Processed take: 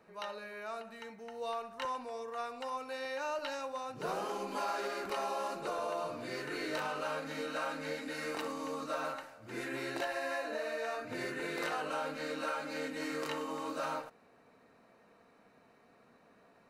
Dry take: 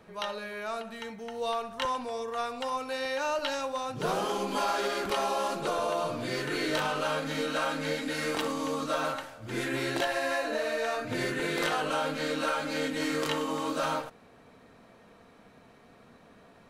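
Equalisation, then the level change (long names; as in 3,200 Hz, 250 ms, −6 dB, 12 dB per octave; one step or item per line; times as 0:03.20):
low-shelf EQ 140 Hz −12 dB
parametric band 8,400 Hz −3.5 dB 2.3 octaves
notch filter 3,300 Hz, Q 6.1
−6.0 dB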